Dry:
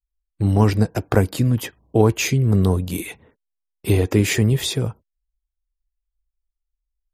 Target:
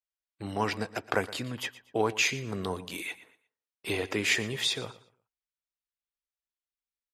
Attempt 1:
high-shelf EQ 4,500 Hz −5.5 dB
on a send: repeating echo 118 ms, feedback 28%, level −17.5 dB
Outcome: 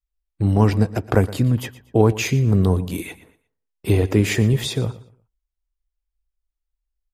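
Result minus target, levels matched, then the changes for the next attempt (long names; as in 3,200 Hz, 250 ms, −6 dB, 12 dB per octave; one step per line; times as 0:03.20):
4,000 Hz band −10.5 dB
add first: resonant band-pass 2,900 Hz, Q 0.51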